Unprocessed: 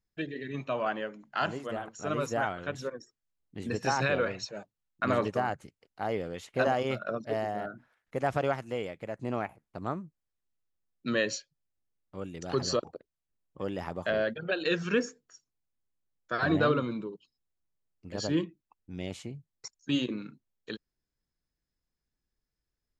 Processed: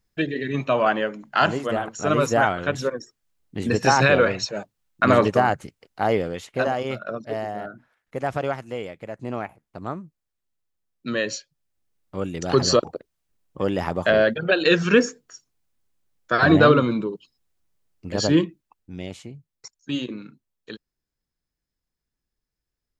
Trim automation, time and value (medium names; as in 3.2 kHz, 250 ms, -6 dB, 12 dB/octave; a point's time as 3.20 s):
6.13 s +11 dB
6.69 s +3 dB
11.16 s +3 dB
12.20 s +11 dB
18.30 s +11 dB
19.22 s +1.5 dB